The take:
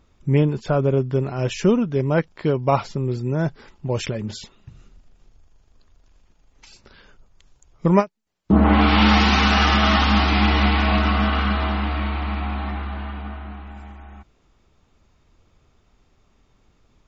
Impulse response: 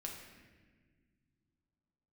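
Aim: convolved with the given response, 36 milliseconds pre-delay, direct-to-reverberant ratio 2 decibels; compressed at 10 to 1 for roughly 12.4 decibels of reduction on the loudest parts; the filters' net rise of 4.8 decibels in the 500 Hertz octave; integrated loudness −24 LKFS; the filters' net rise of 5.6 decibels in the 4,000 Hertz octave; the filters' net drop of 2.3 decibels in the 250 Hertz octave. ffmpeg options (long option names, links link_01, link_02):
-filter_complex "[0:a]equalizer=frequency=250:width_type=o:gain=-5,equalizer=frequency=500:width_type=o:gain=7.5,equalizer=frequency=4000:width_type=o:gain=7.5,acompressor=threshold=-22dB:ratio=10,asplit=2[link_01][link_02];[1:a]atrim=start_sample=2205,adelay=36[link_03];[link_02][link_03]afir=irnorm=-1:irlink=0,volume=0dB[link_04];[link_01][link_04]amix=inputs=2:normalize=0,volume=1.5dB"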